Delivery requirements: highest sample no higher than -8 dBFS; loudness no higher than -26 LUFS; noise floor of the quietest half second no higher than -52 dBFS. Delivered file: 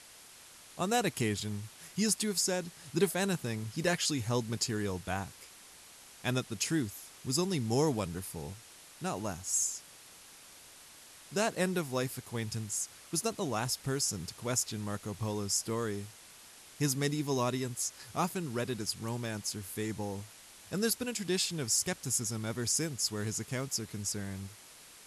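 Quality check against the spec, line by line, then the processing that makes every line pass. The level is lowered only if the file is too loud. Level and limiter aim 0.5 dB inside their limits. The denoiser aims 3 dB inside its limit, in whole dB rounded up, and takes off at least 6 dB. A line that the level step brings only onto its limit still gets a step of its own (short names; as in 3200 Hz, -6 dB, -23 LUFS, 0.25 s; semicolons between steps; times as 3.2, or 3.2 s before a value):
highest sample -15.0 dBFS: OK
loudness -33.5 LUFS: OK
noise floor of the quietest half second -54 dBFS: OK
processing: none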